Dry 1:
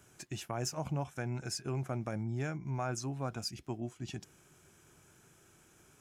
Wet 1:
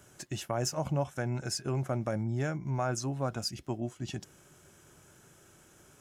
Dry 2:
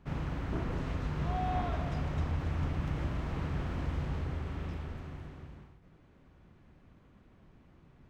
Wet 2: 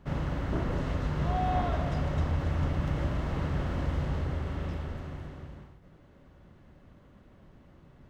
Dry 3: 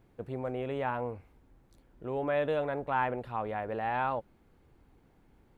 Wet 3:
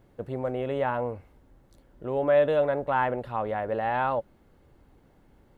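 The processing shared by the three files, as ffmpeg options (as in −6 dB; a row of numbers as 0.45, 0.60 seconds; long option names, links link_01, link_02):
-af "equalizer=frequency=570:width=7.5:gain=6.5,bandreject=frequency=2400:width=13,volume=4dB"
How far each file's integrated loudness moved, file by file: +4.5, +4.0, +6.0 LU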